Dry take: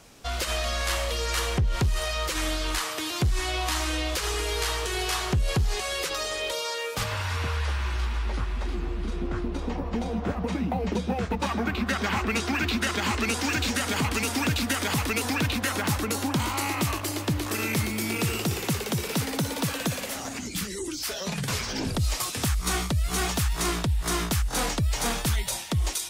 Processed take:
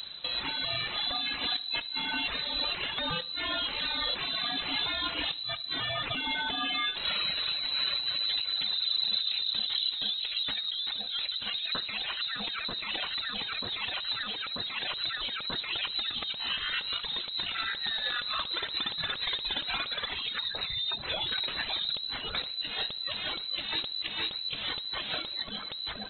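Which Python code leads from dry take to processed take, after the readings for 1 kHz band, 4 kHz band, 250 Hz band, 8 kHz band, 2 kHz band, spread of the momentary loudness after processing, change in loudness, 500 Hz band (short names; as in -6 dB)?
-8.0 dB, +4.5 dB, -17.0 dB, under -40 dB, -4.0 dB, 5 LU, -2.5 dB, -13.0 dB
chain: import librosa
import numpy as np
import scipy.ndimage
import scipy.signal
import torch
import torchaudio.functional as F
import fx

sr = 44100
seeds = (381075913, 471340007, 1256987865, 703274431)

p1 = fx.dereverb_blind(x, sr, rt60_s=1.6)
p2 = fx.over_compress(p1, sr, threshold_db=-34.0, ratio=-1.0)
p3 = fx.dmg_noise_colour(p2, sr, seeds[0], colour='brown', level_db=-46.0)
p4 = p3 + fx.echo_feedback(p3, sr, ms=73, feedback_pct=52, wet_db=-21.0, dry=0)
y = fx.freq_invert(p4, sr, carrier_hz=4000)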